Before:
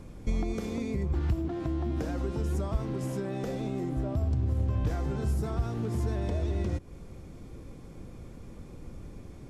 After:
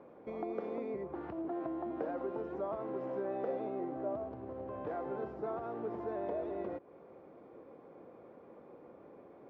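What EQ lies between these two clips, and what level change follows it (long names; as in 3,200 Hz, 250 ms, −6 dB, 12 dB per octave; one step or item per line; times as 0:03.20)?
four-pole ladder band-pass 710 Hz, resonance 20%
high-frequency loss of the air 130 metres
+12.5 dB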